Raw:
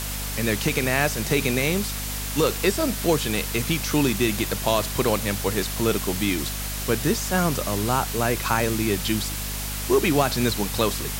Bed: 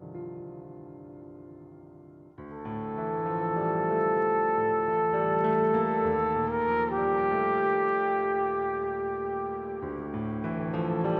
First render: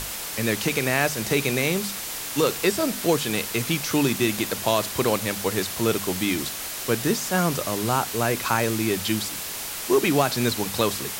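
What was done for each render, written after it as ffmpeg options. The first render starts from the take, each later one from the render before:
-af "bandreject=f=50:t=h:w=6,bandreject=f=100:t=h:w=6,bandreject=f=150:t=h:w=6,bandreject=f=200:t=h:w=6,bandreject=f=250:t=h:w=6"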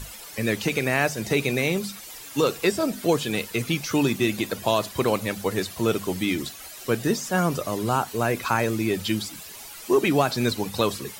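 -af "afftdn=nr=13:nf=-33"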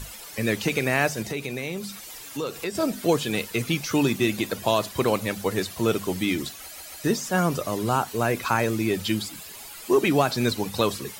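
-filter_complex "[0:a]asettb=1/sr,asplit=3[a][b][c];[a]atrim=end=1.224[d];[b]atrim=start=1.22:end=2.75,asetpts=PTS-STARTPTS,afade=t=in:d=0.004:c=qsin,afade=t=out:st=1.526:d=0.004:c=qsin,acompressor=threshold=-32dB:ratio=2:attack=3.2:release=140:knee=1:detection=peak[e];[c]atrim=start=2.746[f];[d][e]acrossfade=d=0.004:c1=hsin:c2=qsin[g];[g][f]acrossfade=d=0.004:c1=qsin:c2=hsin,asettb=1/sr,asplit=3[h][i][j];[h]atrim=end=9.144[k];[i]atrim=start=9.14:end=9.91,asetpts=PTS-STARTPTS,afade=t=in:d=0.004:c=qsin,afade=t=out:st=0.766:d=0.004:c=qsin,bandreject=f=5.8k:w=12[l];[j]atrim=start=9.906[m];[k][l]acrossfade=d=0.004:c1=hsin:c2=qsin[n];[n][m]acrossfade=d=0.004:c1=qsin:c2=hsin,asplit=4[o][p][q][r];[o]atrim=end=6.762[s];[p]atrim=start=6.618:end=6.762[t];[q]atrim=start=6.618:end=6.762[u];[r]atrim=start=7.038[v];[s][t]acrossfade=d=0.004:c1=hsin:c2=hsin[w];[w][u]acrossfade=d=0.004:c1=hsin:c2=hsin[x];[x][v]acrossfade=d=0.004:c1=hsin:c2=hsin"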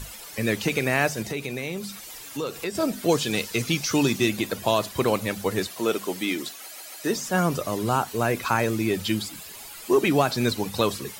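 -filter_complex "[0:a]asettb=1/sr,asplit=3[a][b][c];[a]atrim=end=3.104[d];[b]atrim=start=3.1:end=4.29,asetpts=PTS-STARTPTS,afade=t=in:d=0.004:c=qsin,afade=t=out:st=1.186:d=0.004:c=qsin,equalizer=f=5.5k:t=o:w=1.1:g=6[e];[c]atrim=start=4.286[f];[d][e]acrossfade=d=0.004:c1=hsin:c2=qsin[g];[g][f]acrossfade=d=0.004:c1=qsin:c2=hsin,asettb=1/sr,asplit=3[h][i][j];[h]atrim=end=5.674[k];[i]atrim=start=5.67:end=7.16,asetpts=PTS-STARTPTS,afade=t=in:d=0.004:c=qsin,afade=t=out:st=1.486:d=0.004:c=qsin,highpass=270[l];[j]atrim=start=7.156[m];[k][l]acrossfade=d=0.004:c1=hsin:c2=qsin[n];[n][m]acrossfade=d=0.004:c1=qsin:c2=hsin"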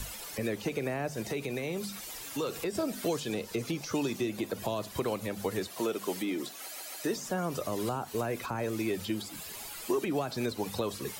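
-filter_complex "[0:a]acrossover=split=340|1100[a][b][c];[a]acompressor=threshold=-38dB:ratio=4[d];[b]acompressor=threshold=-32dB:ratio=4[e];[c]acompressor=threshold=-39dB:ratio=4[f];[d][e][f]amix=inputs=3:normalize=0,acrossover=split=680[g][h];[h]alimiter=level_in=5.5dB:limit=-24dB:level=0:latency=1:release=104,volume=-5.5dB[i];[g][i]amix=inputs=2:normalize=0"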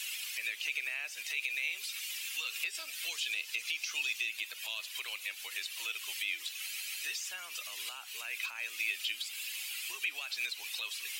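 -af "highpass=f=2.6k:t=q:w=3.7"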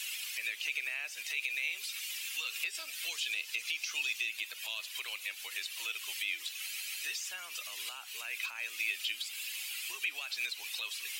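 -af anull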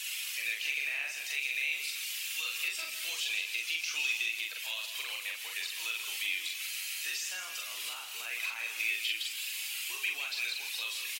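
-filter_complex "[0:a]asplit=2[a][b];[b]adelay=43,volume=-2.5dB[c];[a][c]amix=inputs=2:normalize=0,aecho=1:1:160|285:0.355|0.141"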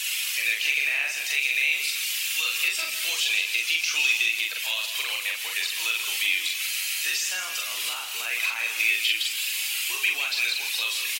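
-af "volume=9.5dB"

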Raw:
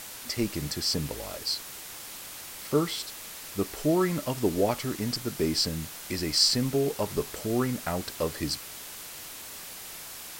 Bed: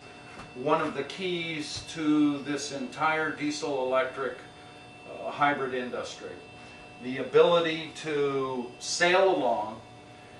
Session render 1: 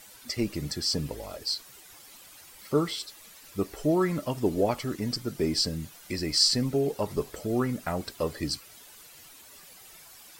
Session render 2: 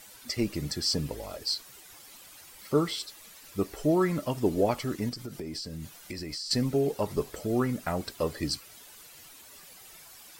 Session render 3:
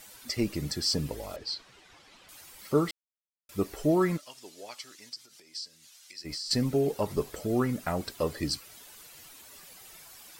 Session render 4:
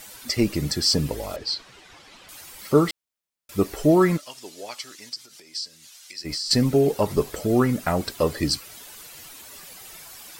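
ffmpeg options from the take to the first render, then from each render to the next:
-af "afftdn=nr=12:nf=-42"
-filter_complex "[0:a]asettb=1/sr,asplit=3[a][b][c];[a]atrim=end=5.094[d];[b]atrim=start=5.09:end=6.51,asetpts=PTS-STARTPTS,afade=t=in:d=0.004:c=qsin,afade=t=out:st=1.416:d=0.004:c=qsin,acompressor=threshold=-33dB:ratio=16:attack=3.2:release=140:knee=1:detection=peak[e];[c]atrim=start=6.506[f];[d][e]acrossfade=d=0.004:c1=hsin:c2=qsin[g];[g][f]acrossfade=d=0.004:c1=qsin:c2=hsin"
-filter_complex "[0:a]asettb=1/sr,asplit=3[a][b][c];[a]atrim=end=1.364[d];[b]atrim=start=1.36:end=2.29,asetpts=PTS-STARTPTS,afade=t=in:d=0.004:c=qsin,afade=t=out:st=0.926:d=0.004:c=qsin,lowpass=3.9k[e];[c]atrim=start=2.286[f];[d][e]acrossfade=d=0.004:c1=hsin:c2=qsin[g];[g][f]acrossfade=d=0.004:c1=qsin:c2=hsin,asplit=3[h][i][j];[h]afade=t=out:st=4.16:d=0.02[k];[i]bandpass=f=5.3k:t=q:w=1,afade=t=in:st=4.16:d=0.02,afade=t=out:st=6.24:d=0.02[l];[j]afade=t=in:st=6.24:d=0.02[m];[k][l][m]amix=inputs=3:normalize=0,asplit=3[n][o][p];[n]atrim=end=2.91,asetpts=PTS-STARTPTS,afade=t=out:st=2.906:d=0.004:c=hsin[q];[o]atrim=start=2.91:end=3.49,asetpts=PTS-STARTPTS,volume=0[r];[p]atrim=start=3.49,asetpts=PTS-STARTPTS,afade=t=in:d=0.004:c=hsin[s];[q][r][s]concat=n=3:v=0:a=1"
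-af "volume=7.5dB"

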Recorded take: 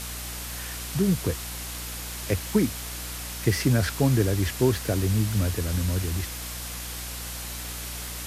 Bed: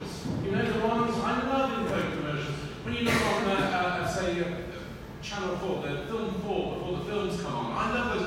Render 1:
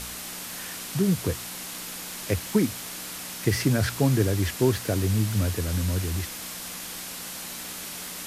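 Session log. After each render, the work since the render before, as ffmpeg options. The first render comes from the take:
-af "bandreject=f=60:t=h:w=4,bandreject=f=120:t=h:w=4"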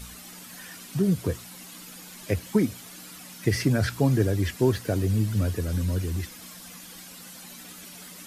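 -af "afftdn=nr=11:nf=-37"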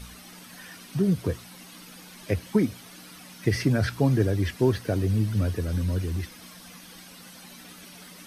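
-af "highshelf=f=8.9k:g=-8,bandreject=f=7.2k:w=6.4"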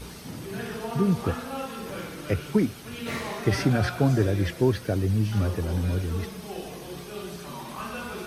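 -filter_complex "[1:a]volume=-7dB[a];[0:a][a]amix=inputs=2:normalize=0"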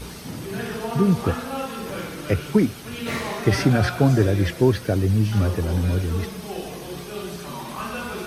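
-af "volume=4.5dB"

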